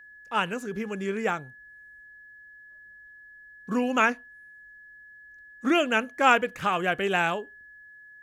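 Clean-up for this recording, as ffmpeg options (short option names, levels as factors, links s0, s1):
-af "bandreject=f=1700:w=30"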